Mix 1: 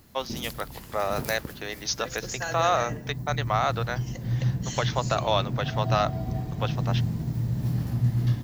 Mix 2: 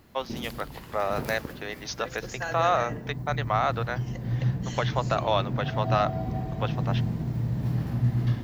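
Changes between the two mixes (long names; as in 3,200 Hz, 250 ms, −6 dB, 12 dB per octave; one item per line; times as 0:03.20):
background: send +11.5 dB
master: add bass and treble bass −4 dB, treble −10 dB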